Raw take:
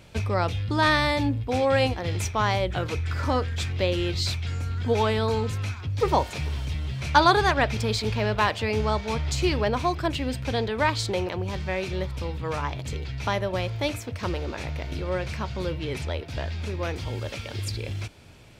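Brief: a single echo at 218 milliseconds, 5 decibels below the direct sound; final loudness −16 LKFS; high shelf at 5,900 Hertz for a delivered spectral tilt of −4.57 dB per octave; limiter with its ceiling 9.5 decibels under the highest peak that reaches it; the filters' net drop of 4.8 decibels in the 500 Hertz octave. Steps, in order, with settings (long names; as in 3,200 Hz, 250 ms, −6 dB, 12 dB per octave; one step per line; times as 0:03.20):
parametric band 500 Hz −6 dB
high-shelf EQ 5,900 Hz +7 dB
brickwall limiter −15 dBFS
single-tap delay 218 ms −5 dB
level +11 dB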